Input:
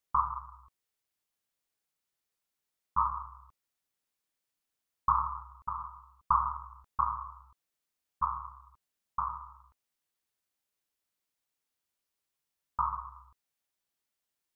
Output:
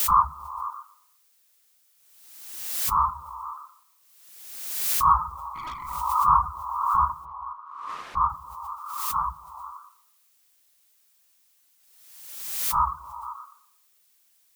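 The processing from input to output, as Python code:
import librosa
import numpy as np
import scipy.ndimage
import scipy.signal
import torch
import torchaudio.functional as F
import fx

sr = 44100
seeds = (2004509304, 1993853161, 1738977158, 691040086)

y = fx.phase_scramble(x, sr, seeds[0], window_ms=100)
y = fx.dereverb_blind(y, sr, rt60_s=1.5)
y = fx.echo_stepped(y, sr, ms=120, hz=250.0, octaves=0.7, feedback_pct=70, wet_db=-5)
y = fx.tube_stage(y, sr, drive_db=40.0, bias=0.65, at=(5.54, 5.96), fade=0.02)
y = fx.dmg_noise_colour(y, sr, seeds[1], colour='blue', level_db=-72.0)
y = fx.lowpass(y, sr, hz=1600.0, slope=12, at=(7.24, 8.28), fade=0.02)
y = fx.pre_swell(y, sr, db_per_s=43.0)
y = y * librosa.db_to_amplitude(8.0)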